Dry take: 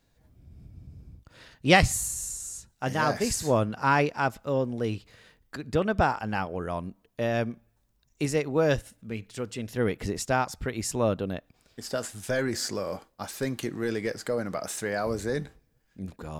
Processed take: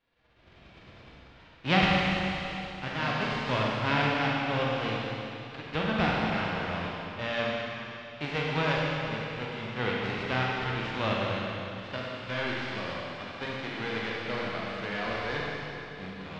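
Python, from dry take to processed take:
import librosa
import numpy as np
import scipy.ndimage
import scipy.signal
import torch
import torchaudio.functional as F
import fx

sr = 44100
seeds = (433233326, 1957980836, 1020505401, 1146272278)

y = fx.envelope_flatten(x, sr, power=0.3)
y = scipy.signal.sosfilt(scipy.signal.butter(4, 3400.0, 'lowpass', fs=sr, output='sos'), y)
y = fx.rev_schroeder(y, sr, rt60_s=3.1, comb_ms=32, drr_db=-4.0)
y = y * librosa.db_to_amplitude(-6.0)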